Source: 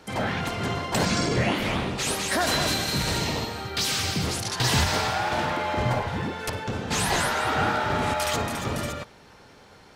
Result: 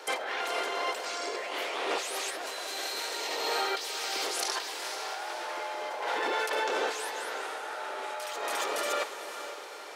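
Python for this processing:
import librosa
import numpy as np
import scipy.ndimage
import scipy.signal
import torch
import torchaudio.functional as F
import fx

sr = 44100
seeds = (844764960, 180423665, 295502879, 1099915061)

y = scipy.signal.sosfilt(scipy.signal.butter(6, 380.0, 'highpass', fs=sr, output='sos'), x)
y = fx.over_compress(y, sr, threshold_db=-35.0, ratio=-1.0)
y = fx.echo_diffused(y, sr, ms=497, feedback_pct=47, wet_db=-10)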